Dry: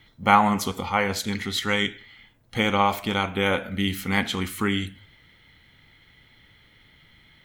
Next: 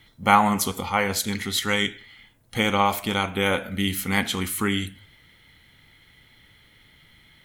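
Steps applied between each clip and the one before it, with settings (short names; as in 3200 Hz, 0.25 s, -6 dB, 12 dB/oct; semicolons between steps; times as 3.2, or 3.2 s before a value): bell 11000 Hz +9.5 dB 1.2 oct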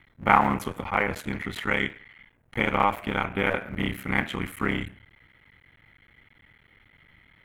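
cycle switcher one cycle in 3, muted; resonant high shelf 3200 Hz -13.5 dB, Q 1.5; gain -1.5 dB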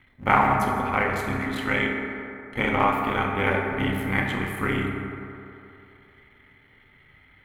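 reverb RT60 2.9 s, pre-delay 4 ms, DRR -0.5 dB; gain -1 dB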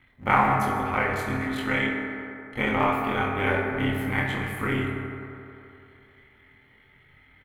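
doubler 23 ms -3 dB; gain -3 dB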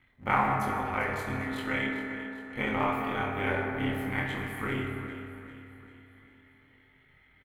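feedback echo 0.397 s, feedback 50%, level -13 dB; gain -5.5 dB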